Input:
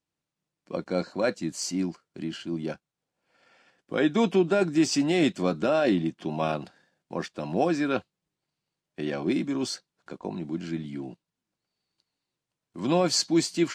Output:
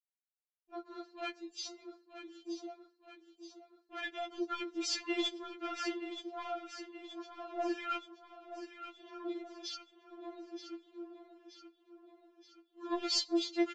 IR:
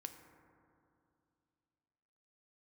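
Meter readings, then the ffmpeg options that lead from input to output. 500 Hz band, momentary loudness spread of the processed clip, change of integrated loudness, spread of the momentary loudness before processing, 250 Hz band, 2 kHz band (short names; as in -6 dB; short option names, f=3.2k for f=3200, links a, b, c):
-14.5 dB, 21 LU, -12.5 dB, 14 LU, -14.0 dB, -9.5 dB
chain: -filter_complex "[0:a]aeval=exprs='if(lt(val(0),0),0.447*val(0),val(0))':c=same,afwtdn=0.0112,highpass=f=1.4k:p=1,agate=range=-33dB:threshold=-52dB:ratio=3:detection=peak,equalizer=f=3.5k:t=o:w=0.59:g=6.5,aresample=16000,asoftclip=type=tanh:threshold=-25.5dB,aresample=44100,aecho=1:1:926|1852|2778|3704|4630|5556:0.282|0.152|0.0822|0.0444|0.024|0.0129,asplit=2[a][b];[1:a]atrim=start_sample=2205,afade=t=out:st=0.2:d=0.01,atrim=end_sample=9261[c];[b][c]afir=irnorm=-1:irlink=0,volume=-4.5dB[d];[a][d]amix=inputs=2:normalize=0,afftfilt=real='re*4*eq(mod(b,16),0)':imag='im*4*eq(mod(b,16),0)':win_size=2048:overlap=0.75,volume=-1.5dB"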